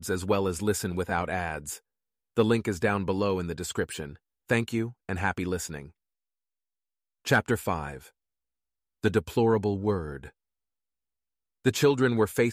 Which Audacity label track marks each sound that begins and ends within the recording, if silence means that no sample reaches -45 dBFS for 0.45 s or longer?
2.370000	5.890000	sound
7.250000	8.080000	sound
9.030000	10.290000	sound